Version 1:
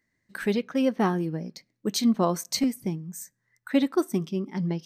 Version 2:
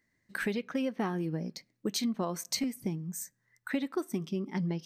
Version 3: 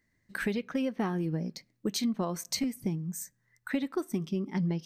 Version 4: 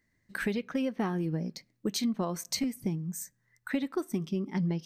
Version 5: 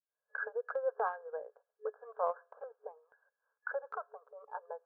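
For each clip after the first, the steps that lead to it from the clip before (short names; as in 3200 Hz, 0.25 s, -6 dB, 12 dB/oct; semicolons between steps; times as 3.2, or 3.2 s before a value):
dynamic EQ 2300 Hz, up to +4 dB, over -46 dBFS, Q 1.6; compressor 6:1, threshold -29 dBFS, peak gain reduction 12.5 dB
low shelf 110 Hz +9.5 dB
nothing audible
opening faded in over 0.69 s; FFT band-pass 420–1700 Hz; transient shaper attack -1 dB, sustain -5 dB; gain +3.5 dB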